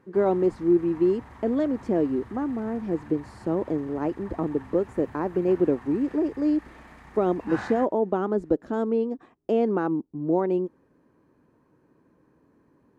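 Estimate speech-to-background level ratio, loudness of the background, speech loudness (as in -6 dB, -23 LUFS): 19.0 dB, -45.0 LUFS, -26.0 LUFS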